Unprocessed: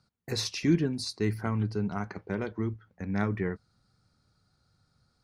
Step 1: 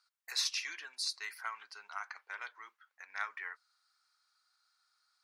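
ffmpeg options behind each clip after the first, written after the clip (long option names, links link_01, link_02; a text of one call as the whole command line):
ffmpeg -i in.wav -af "highpass=frequency=1100:width=0.5412,highpass=frequency=1100:width=1.3066" out.wav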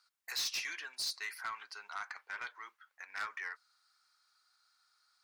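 ffmpeg -i in.wav -af "asoftclip=type=tanh:threshold=-34.5dB,volume=3dB" out.wav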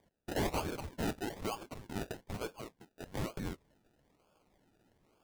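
ffmpeg -i in.wav -af "acrusher=samples=32:mix=1:aa=0.000001:lfo=1:lforange=19.2:lforate=1.1,volume=3dB" out.wav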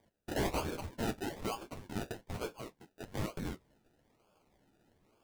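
ffmpeg -i in.wav -af "flanger=delay=8.6:depth=6.6:regen=-32:speed=0.96:shape=sinusoidal,volume=4dB" out.wav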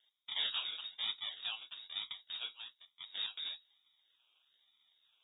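ffmpeg -i in.wav -af "lowpass=frequency=3200:width_type=q:width=0.5098,lowpass=frequency=3200:width_type=q:width=0.6013,lowpass=frequency=3200:width_type=q:width=0.9,lowpass=frequency=3200:width_type=q:width=2.563,afreqshift=-3800,volume=-3.5dB" out.wav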